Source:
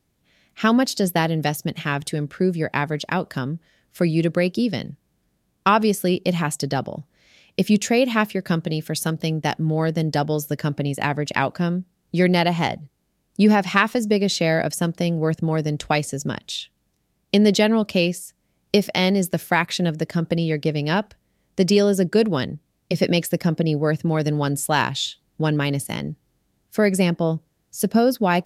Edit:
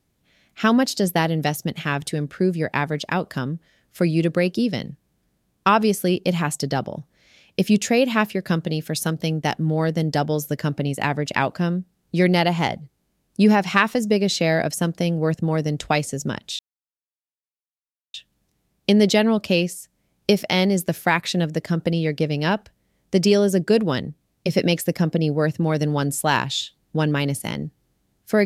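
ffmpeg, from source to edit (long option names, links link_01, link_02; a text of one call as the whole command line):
ffmpeg -i in.wav -filter_complex "[0:a]asplit=2[link_01][link_02];[link_01]atrim=end=16.59,asetpts=PTS-STARTPTS,afade=type=out:start_time=16.586:duration=0.004:curve=hsin,apad=pad_dur=1.55[link_03];[link_02]atrim=start=16.59,asetpts=PTS-STARTPTS,afade=type=in:duration=0.004:curve=hsin[link_04];[link_03][link_04]concat=n=2:v=0:a=1" out.wav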